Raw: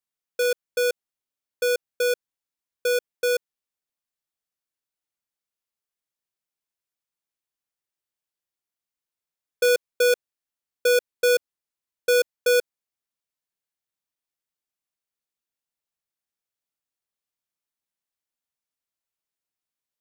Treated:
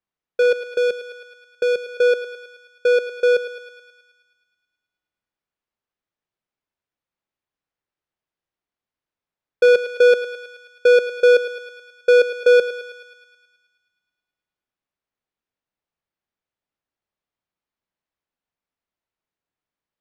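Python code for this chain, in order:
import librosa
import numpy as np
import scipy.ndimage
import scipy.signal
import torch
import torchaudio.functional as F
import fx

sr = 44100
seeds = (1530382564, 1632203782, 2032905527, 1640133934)

y = fx.spacing_loss(x, sr, db_at_10k=27)
y = fx.echo_thinned(y, sr, ms=107, feedback_pct=68, hz=520.0, wet_db=-11)
y = fx.dynamic_eq(y, sr, hz=950.0, q=0.79, threshold_db=-39.0, ratio=4.0, max_db=-7, at=(0.67, 1.89))
y = y * 10.0 ** (8.5 / 20.0)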